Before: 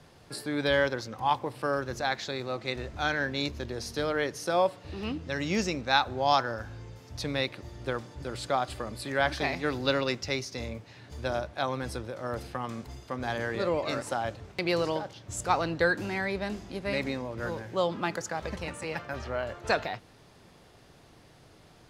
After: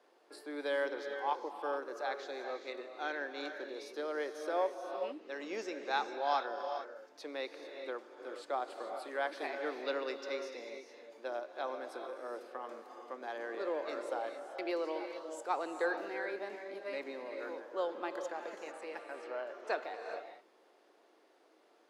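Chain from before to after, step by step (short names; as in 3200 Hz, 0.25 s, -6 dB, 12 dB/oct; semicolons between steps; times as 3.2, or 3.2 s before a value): steep high-pass 310 Hz 36 dB/oct; high shelf 2300 Hz -10.5 dB; non-linear reverb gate 0.47 s rising, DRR 6 dB; gain -7 dB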